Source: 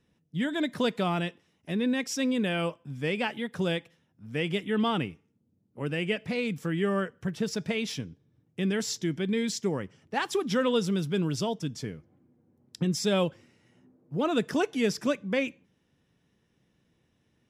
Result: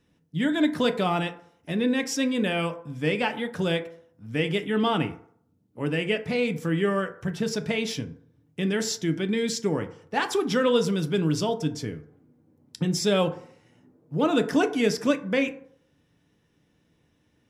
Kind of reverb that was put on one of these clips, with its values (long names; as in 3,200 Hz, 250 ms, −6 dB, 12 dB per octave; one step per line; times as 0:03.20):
feedback delay network reverb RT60 0.61 s, low-frequency decay 0.75×, high-frequency decay 0.35×, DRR 7 dB
level +3 dB